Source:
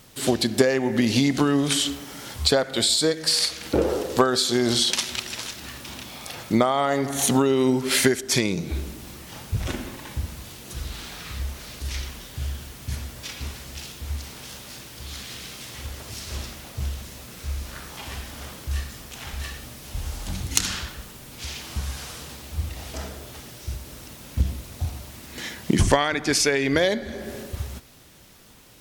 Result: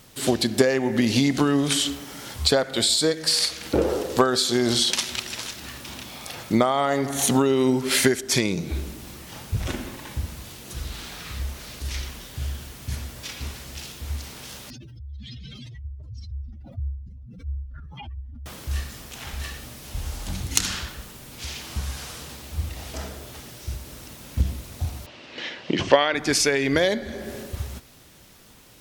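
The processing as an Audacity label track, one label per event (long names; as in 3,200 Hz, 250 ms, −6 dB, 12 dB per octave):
14.700000	18.460000	expanding power law on the bin magnitudes exponent 3.8
25.060000	26.150000	loudspeaker in its box 200–4,800 Hz, peaks and dips at 210 Hz −7 dB, 550 Hz +6 dB, 2,800 Hz +7 dB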